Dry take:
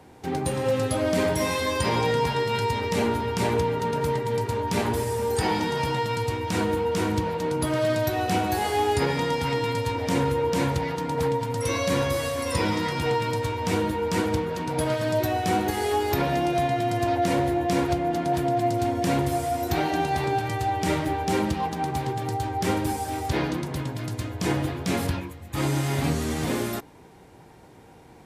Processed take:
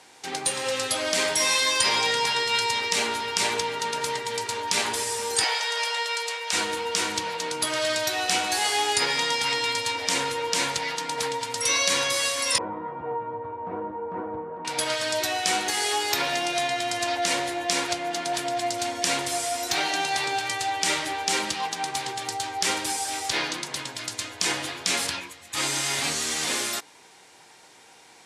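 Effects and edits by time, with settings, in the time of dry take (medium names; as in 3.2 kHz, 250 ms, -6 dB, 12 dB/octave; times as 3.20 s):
5.44–6.53 s: rippled Chebyshev high-pass 440 Hz, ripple 3 dB
12.58–14.65 s: low-pass 1 kHz 24 dB/octave
whole clip: frequency weighting ITU-R 468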